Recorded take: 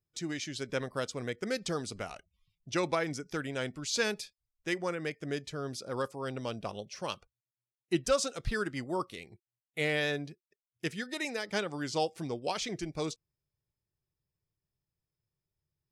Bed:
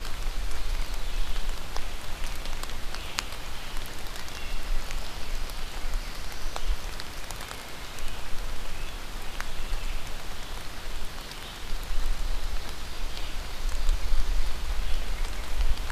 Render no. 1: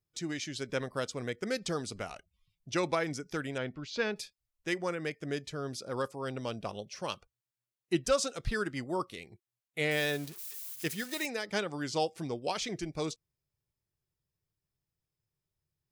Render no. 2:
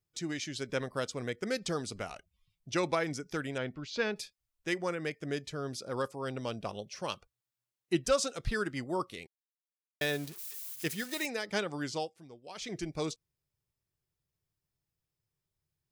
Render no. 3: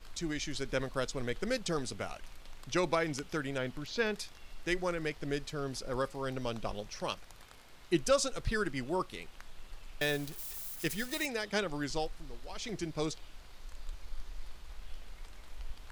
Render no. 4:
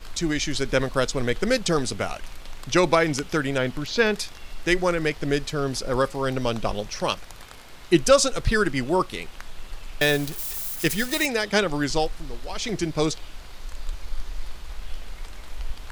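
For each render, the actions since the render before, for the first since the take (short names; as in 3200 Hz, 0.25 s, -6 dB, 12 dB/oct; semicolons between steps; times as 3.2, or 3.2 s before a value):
3.58–4.16 air absorption 230 m; 9.91–11.26 switching spikes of -33.5 dBFS
9.27–10.01 mute; 11.84–12.8 dip -15.5 dB, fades 0.31 s
add bed -18 dB
gain +11.5 dB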